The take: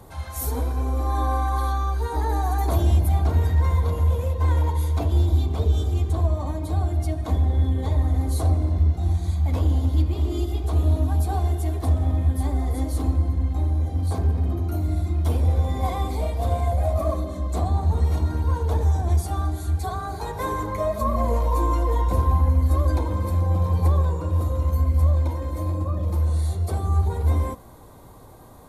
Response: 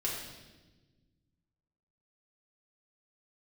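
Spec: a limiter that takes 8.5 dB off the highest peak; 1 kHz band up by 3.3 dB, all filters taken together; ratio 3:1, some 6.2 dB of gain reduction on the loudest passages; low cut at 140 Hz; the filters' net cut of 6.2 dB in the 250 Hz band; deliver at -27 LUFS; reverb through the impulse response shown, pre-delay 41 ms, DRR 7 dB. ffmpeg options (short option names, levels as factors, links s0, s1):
-filter_complex "[0:a]highpass=140,equalizer=f=250:t=o:g=-8,equalizer=f=1000:t=o:g=4.5,acompressor=threshold=0.0398:ratio=3,alimiter=level_in=1.41:limit=0.0631:level=0:latency=1,volume=0.708,asplit=2[s0][s1];[1:a]atrim=start_sample=2205,adelay=41[s2];[s1][s2]afir=irnorm=-1:irlink=0,volume=0.266[s3];[s0][s3]amix=inputs=2:normalize=0,volume=2.37"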